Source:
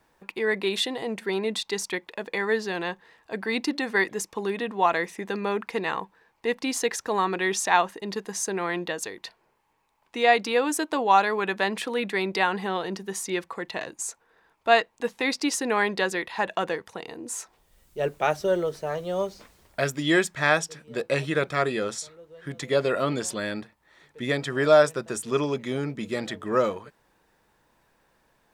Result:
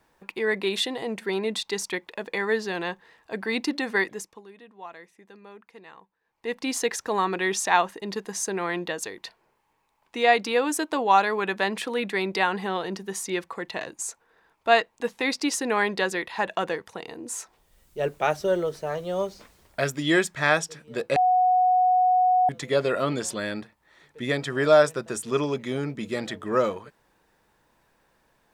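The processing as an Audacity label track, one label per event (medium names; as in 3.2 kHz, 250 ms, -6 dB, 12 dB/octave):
3.940000	6.700000	dip -19.5 dB, fades 0.49 s
21.160000	22.490000	bleep 735 Hz -16.5 dBFS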